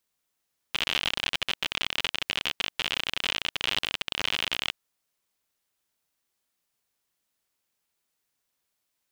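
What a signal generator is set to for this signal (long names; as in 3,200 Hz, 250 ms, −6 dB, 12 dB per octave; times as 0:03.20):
Geiger counter clicks 59 per second −10.5 dBFS 3.98 s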